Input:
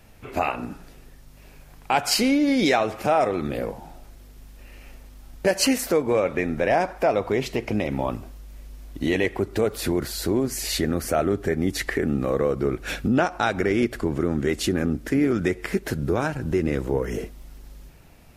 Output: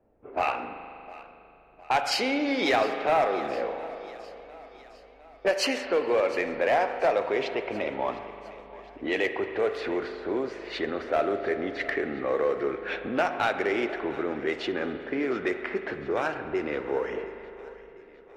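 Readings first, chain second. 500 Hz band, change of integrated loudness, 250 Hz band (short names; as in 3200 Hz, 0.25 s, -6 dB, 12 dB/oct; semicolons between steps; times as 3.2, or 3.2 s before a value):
-2.5 dB, -4.0 dB, -9.0 dB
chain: vibrato 3.4 Hz 5.2 cents; three-band isolator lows -21 dB, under 350 Hz, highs -16 dB, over 4900 Hz; in parallel at -6 dB: soft clip -26.5 dBFS, distortion -7 dB; on the sum: low-pass opened by the level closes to 400 Hz, open at -19.5 dBFS; one-sided clip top -15.5 dBFS; on a send: thinning echo 0.708 s, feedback 56%, high-pass 170 Hz, level -19 dB; on the sum: spring tank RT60 3 s, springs 39 ms, chirp 30 ms, DRR 8 dB; gain -3 dB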